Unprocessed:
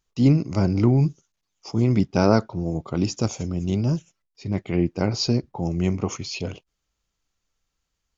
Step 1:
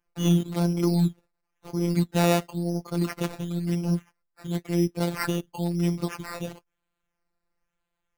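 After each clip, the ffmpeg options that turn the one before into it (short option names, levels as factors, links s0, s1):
-af "acrusher=samples=11:mix=1:aa=0.000001:lfo=1:lforange=6.6:lforate=0.98,afftfilt=real='hypot(re,im)*cos(PI*b)':imag='0':win_size=1024:overlap=0.75"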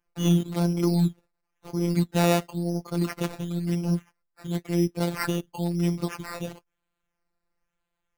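-af anull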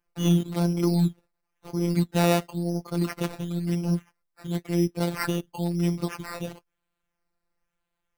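-af "bandreject=f=6800:w=17"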